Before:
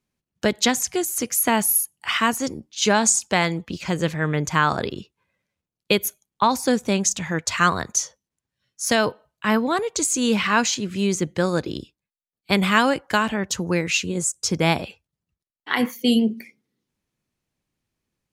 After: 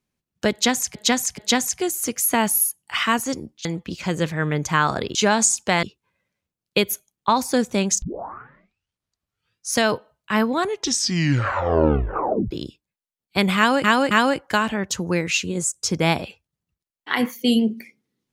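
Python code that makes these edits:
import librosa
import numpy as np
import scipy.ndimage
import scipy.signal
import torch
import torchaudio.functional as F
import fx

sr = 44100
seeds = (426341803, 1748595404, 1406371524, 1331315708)

y = fx.edit(x, sr, fx.repeat(start_s=0.52, length_s=0.43, count=3),
    fx.move(start_s=2.79, length_s=0.68, to_s=4.97),
    fx.tape_start(start_s=7.16, length_s=1.73),
    fx.tape_stop(start_s=9.72, length_s=1.93),
    fx.repeat(start_s=12.71, length_s=0.27, count=3), tone=tone)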